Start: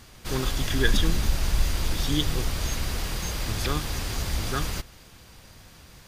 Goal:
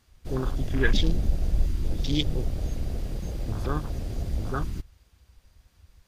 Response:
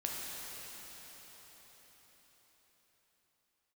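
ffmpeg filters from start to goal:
-af "afwtdn=0.0282"

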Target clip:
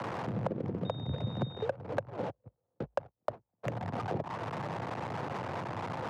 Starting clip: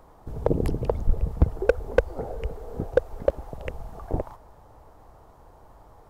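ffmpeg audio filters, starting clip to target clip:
-filter_complex "[0:a]aeval=exprs='val(0)+0.5*0.0355*sgn(val(0))':c=same,highpass=65,asplit=3[s0][s1][s2];[s0]afade=t=out:st=2.29:d=0.02[s3];[s1]agate=range=0.00447:threshold=0.0631:ratio=16:detection=peak,afade=t=in:st=2.29:d=0.02,afade=t=out:st=3.63:d=0.02[s4];[s2]afade=t=in:st=3.63:d=0.02[s5];[s3][s4][s5]amix=inputs=3:normalize=0,acrossover=split=290|380|2000[s6][s7][s8][s9];[s9]alimiter=level_in=2.37:limit=0.0631:level=0:latency=1:release=25,volume=0.422[s10];[s6][s7][s8][s10]amix=inputs=4:normalize=0,acompressor=threshold=0.0316:ratio=10,afreqshift=55,adynamicsmooth=sensitivity=6:basefreq=1000,asettb=1/sr,asplit=3[s11][s12][s13];[s11]atrim=end=0.854[s14];[s12]atrim=start=0.85:end=1.65,asetpts=PTS-STARTPTS,afade=t=in:d=0.004:c=qsin,afade=t=out:st=0.796:d=0.004:c=qsin,aeval=exprs='val(0)+0.00355*sin(2*PI*3700*n/s)':c=same[s15];[s13]atrim=start=1.646[s16];[s14][s15]acrossfade=d=0.004:c1=hsin:c2=qsin[s17];[s17][s16]acrossfade=d=0.004:c1=qsin:c2=hsin"

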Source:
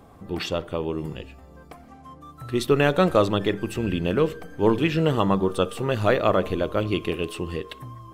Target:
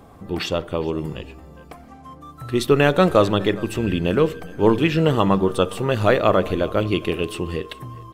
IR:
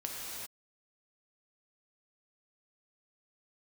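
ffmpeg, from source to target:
-af "aecho=1:1:411:0.0794,volume=1.5"

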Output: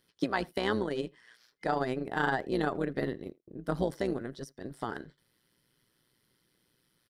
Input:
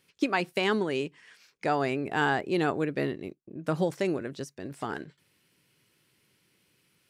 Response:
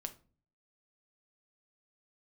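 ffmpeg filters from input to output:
-filter_complex "[0:a]tremolo=f=120:d=0.75,superequalizer=12b=0.355:15b=0.501,asplit=2[s0][s1];[s1]adelay=80,highpass=300,lowpass=3400,asoftclip=type=hard:threshold=0.0562,volume=0.0631[s2];[s0][s2]amix=inputs=2:normalize=0"

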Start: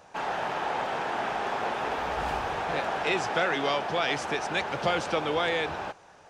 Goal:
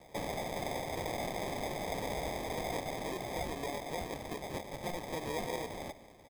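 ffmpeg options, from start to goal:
-filter_complex "[0:a]asettb=1/sr,asplit=3[s0][s1][s2];[s0]atrim=end=3.504[s3];[s1]atrim=start=3.5:end=5.16,asetpts=PTS-STARTPTS,afade=t=in:d=0.004:c=qsin,afade=t=out:st=1.656:d=0.004:c=qsin,aeval=exprs='sgn(val(0))*max(abs(val(0))-0.00596,0)':c=same[s4];[s2]atrim=start=5.156[s5];[s3][s4]acrossfade=d=0.004:c1=hsin:c2=qsin[s6];[s6][s5]acrossfade=d=0.004:c1=qsin:c2=hsin,alimiter=limit=0.0631:level=0:latency=1:release=441,acrusher=samples=31:mix=1:aa=0.000001,asplit=2[s7][s8];[s8]adelay=145.8,volume=0.158,highshelf=f=4000:g=-3.28[s9];[s7][s9]amix=inputs=2:normalize=0,volume=0.668"

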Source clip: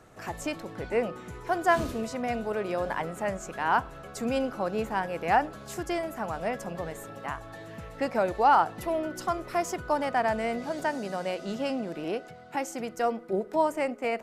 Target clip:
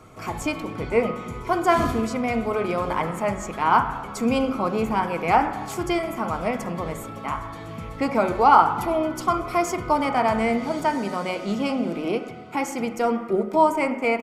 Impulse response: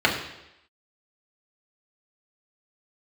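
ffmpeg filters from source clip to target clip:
-filter_complex "[0:a]aecho=1:1:0.9:0.34,asplit=2[s0][s1];[1:a]atrim=start_sample=2205,asetrate=31752,aresample=44100[s2];[s1][s2]afir=irnorm=-1:irlink=0,volume=0.075[s3];[s0][s3]amix=inputs=2:normalize=0,volume=1.58"

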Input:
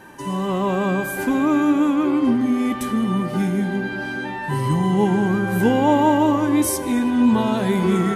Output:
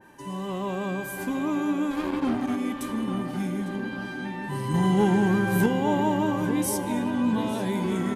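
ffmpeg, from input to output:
-filter_complex "[0:a]equalizer=f=1300:t=o:w=0.2:g=-4.5,asplit=3[s0][s1][s2];[s0]afade=t=out:st=1.9:d=0.02[s3];[s1]aeval=exprs='0.376*(cos(1*acos(clip(val(0)/0.376,-1,1)))-cos(1*PI/2))+0.0596*(cos(7*acos(clip(val(0)/0.376,-1,1)))-cos(7*PI/2))':c=same,afade=t=in:st=1.9:d=0.02,afade=t=out:st=2.55:d=0.02[s4];[s2]afade=t=in:st=2.55:d=0.02[s5];[s3][s4][s5]amix=inputs=3:normalize=0,asettb=1/sr,asplit=3[s6][s7][s8];[s6]atrim=end=4.744[s9];[s7]atrim=start=4.74:end=5.66,asetpts=PTS-STARTPTS,afade=t=in:d=0.004:c=qsin,afade=t=out:st=0.916:d=0.004:c=qsin,acontrast=78[s10];[s8]atrim=start=5.656[s11];[s9][s10]acrossfade=d=0.004:c1=hsin:c2=qsin[s12];[s12][s11]acrossfade=d=0.004:c1=qsin:c2=hsin,asplit=2[s13][s14];[s14]adelay=852,lowpass=f=2900:p=1,volume=0.398,asplit=2[s15][s16];[s16]adelay=852,lowpass=f=2900:p=1,volume=0.53,asplit=2[s17][s18];[s18]adelay=852,lowpass=f=2900:p=1,volume=0.53,asplit=2[s19][s20];[s20]adelay=852,lowpass=f=2900:p=1,volume=0.53,asplit=2[s21][s22];[s22]adelay=852,lowpass=f=2900:p=1,volume=0.53,asplit=2[s23][s24];[s24]adelay=852,lowpass=f=2900:p=1,volume=0.53[s25];[s13][s15][s17][s19][s21][s23][s25]amix=inputs=7:normalize=0,adynamicequalizer=threshold=0.0224:dfrequency=2300:dqfactor=0.7:tfrequency=2300:tqfactor=0.7:attack=5:release=100:ratio=0.375:range=1.5:mode=boostabove:tftype=highshelf,volume=0.355"

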